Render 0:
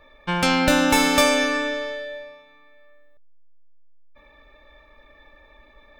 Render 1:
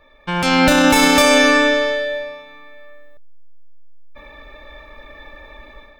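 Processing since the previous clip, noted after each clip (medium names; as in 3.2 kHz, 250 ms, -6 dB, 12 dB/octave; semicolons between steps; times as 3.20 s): peak limiter -14 dBFS, peak gain reduction 9 dB; level rider gain up to 12 dB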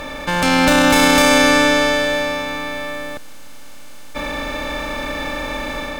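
spectral levelling over time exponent 0.4; trim -3 dB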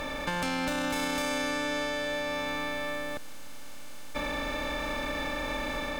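compression 6:1, threshold -23 dBFS, peak gain reduction 13 dB; trim -5.5 dB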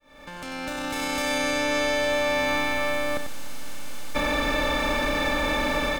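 fade-in on the opening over 1.94 s; delay 94 ms -7.5 dB; trim +7.5 dB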